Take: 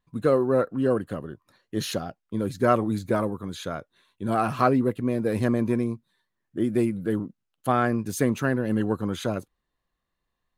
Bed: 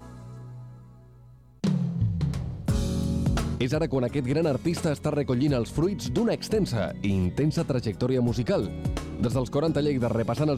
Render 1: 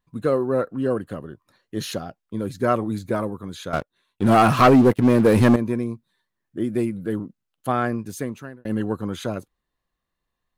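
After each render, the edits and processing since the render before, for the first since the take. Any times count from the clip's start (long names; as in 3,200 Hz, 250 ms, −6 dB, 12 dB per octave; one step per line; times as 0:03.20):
0:03.73–0:05.56: leveller curve on the samples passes 3
0:07.87–0:08.65: fade out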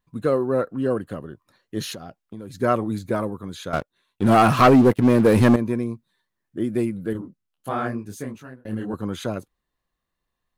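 0:01.92–0:02.54: downward compressor, threshold −32 dBFS
0:07.13–0:08.94: micro pitch shift up and down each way 54 cents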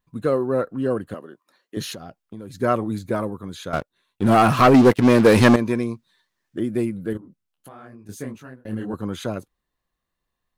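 0:01.14–0:01.77: Bessel high-pass filter 310 Hz, order 4
0:04.74–0:06.60: drawn EQ curve 160 Hz 0 dB, 5,600 Hz +10 dB, 11,000 Hz +3 dB
0:07.17–0:08.09: downward compressor 5 to 1, threshold −41 dBFS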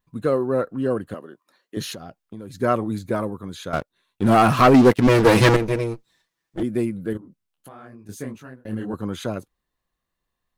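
0:05.07–0:06.63: lower of the sound and its delayed copy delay 6.1 ms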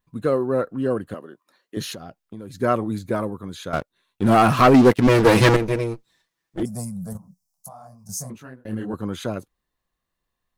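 0:06.65–0:08.30: drawn EQ curve 120 Hz 0 dB, 180 Hz +6 dB, 340 Hz −28 dB, 680 Hz +6 dB, 1,100 Hz 0 dB, 1,700 Hz −19 dB, 3,200 Hz −20 dB, 5,400 Hz +15 dB, 10,000 Hz +11 dB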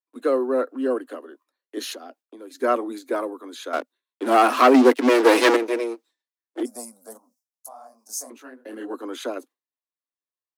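noise gate with hold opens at −44 dBFS
Butterworth high-pass 250 Hz 96 dB per octave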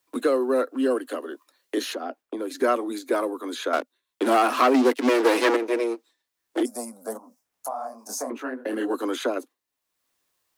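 multiband upward and downward compressor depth 70%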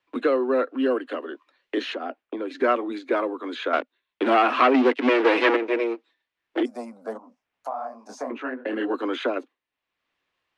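low-pass with resonance 2,700 Hz, resonance Q 1.6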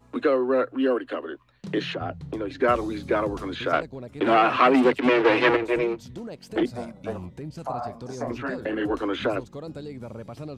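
mix in bed −12.5 dB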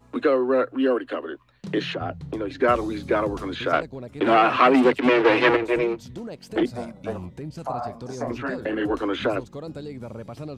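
level +1.5 dB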